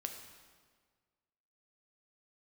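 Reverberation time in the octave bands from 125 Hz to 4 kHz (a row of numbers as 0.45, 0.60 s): 1.8, 1.7, 1.7, 1.6, 1.4, 1.3 s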